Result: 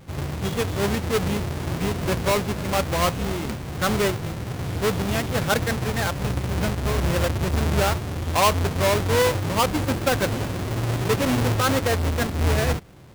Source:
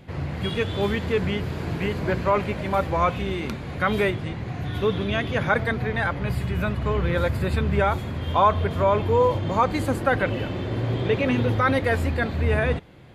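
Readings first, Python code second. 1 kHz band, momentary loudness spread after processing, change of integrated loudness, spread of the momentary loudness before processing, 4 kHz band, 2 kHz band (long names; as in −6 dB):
−1.0 dB, 7 LU, +0.5 dB, 8 LU, +5.5 dB, −1.0 dB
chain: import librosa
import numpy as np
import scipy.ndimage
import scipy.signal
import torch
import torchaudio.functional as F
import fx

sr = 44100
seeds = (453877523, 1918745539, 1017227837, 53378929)

y = fx.halfwave_hold(x, sr)
y = y * 10.0 ** (-4.0 / 20.0)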